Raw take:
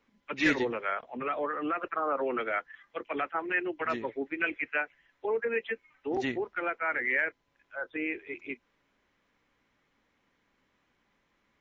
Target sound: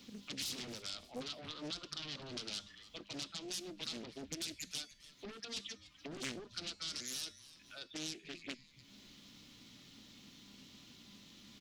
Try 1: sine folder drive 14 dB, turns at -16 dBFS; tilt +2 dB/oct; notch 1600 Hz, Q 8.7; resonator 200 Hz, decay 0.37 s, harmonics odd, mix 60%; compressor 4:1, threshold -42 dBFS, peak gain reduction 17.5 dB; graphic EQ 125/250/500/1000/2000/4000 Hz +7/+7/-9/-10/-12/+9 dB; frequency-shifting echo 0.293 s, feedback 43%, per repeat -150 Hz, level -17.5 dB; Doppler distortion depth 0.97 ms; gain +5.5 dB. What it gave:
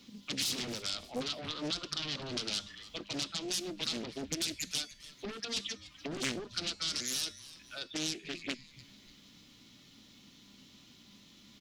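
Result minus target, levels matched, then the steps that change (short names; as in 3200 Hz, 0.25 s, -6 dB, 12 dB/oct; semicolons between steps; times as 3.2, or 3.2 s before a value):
compressor: peak gain reduction -7.5 dB
change: compressor 4:1, threshold -52 dBFS, peak gain reduction 25 dB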